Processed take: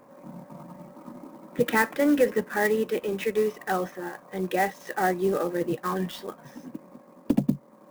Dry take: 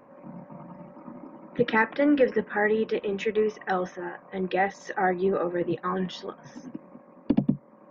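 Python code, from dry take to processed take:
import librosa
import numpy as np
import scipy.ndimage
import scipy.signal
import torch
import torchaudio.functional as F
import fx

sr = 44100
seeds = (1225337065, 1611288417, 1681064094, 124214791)

y = fx.clock_jitter(x, sr, seeds[0], jitter_ms=0.024)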